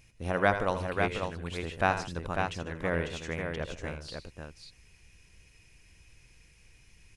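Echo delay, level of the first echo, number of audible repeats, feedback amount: 81 ms, -9.5 dB, 3, no steady repeat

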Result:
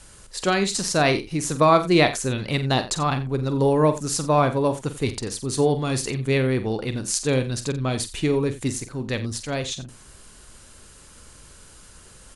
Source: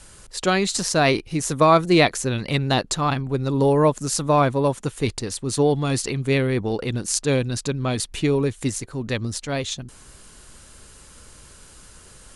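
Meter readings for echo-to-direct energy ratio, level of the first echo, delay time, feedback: -10.0 dB, -11.0 dB, 46 ms, no steady repeat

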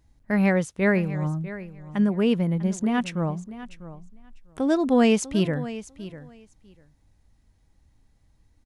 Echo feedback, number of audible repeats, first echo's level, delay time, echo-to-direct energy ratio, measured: 15%, 2, -15.0 dB, 0.647 s, -15.0 dB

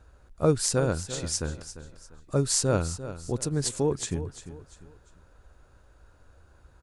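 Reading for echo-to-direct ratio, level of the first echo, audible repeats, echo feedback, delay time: -12.5 dB, -13.0 dB, 3, 34%, 0.347 s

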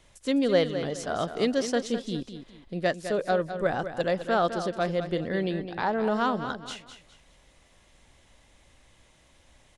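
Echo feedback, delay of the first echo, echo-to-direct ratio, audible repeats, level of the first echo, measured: 31%, 0.207 s, -9.5 dB, 3, -10.0 dB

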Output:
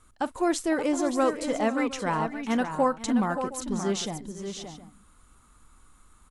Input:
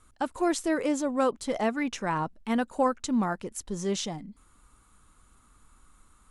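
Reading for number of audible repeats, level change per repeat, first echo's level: 4, no steady repeat, -20.0 dB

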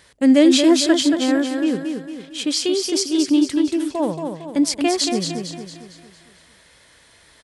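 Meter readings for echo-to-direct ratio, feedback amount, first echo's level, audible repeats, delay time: -5.0 dB, 46%, -6.0 dB, 5, 0.227 s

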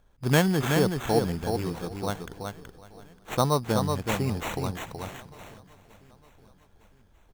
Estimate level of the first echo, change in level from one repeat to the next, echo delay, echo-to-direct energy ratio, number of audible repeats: -5.0 dB, no steady repeat, 0.375 s, -5.0 dB, 6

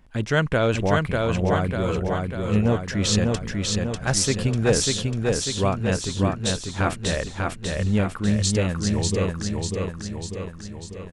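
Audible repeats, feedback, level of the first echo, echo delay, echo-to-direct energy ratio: 7, 57%, -3.0 dB, 0.595 s, -1.5 dB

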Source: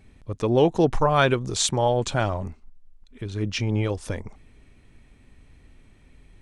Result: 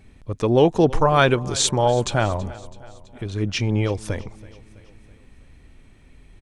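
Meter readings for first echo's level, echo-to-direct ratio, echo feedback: -20.0 dB, -18.5 dB, 54%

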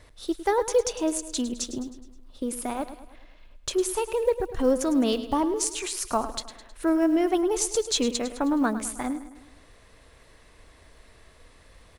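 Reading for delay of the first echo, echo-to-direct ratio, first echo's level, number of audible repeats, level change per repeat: 0.105 s, -11.5 dB, -13.0 dB, 4, -6.0 dB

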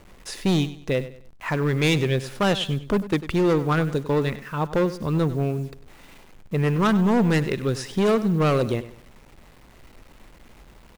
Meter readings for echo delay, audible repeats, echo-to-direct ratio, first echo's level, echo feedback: 98 ms, 3, -14.5 dB, -15.0 dB, 32%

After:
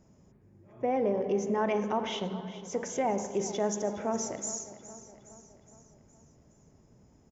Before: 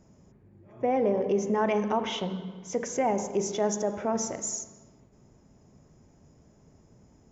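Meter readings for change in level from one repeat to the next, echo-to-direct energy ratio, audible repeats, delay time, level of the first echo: -5.0 dB, -13.5 dB, 4, 0.415 s, -15.0 dB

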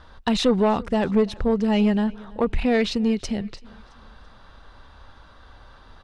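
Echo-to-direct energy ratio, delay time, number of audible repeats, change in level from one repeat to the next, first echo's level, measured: -22.0 dB, 0.333 s, 2, -8.0 dB, -23.0 dB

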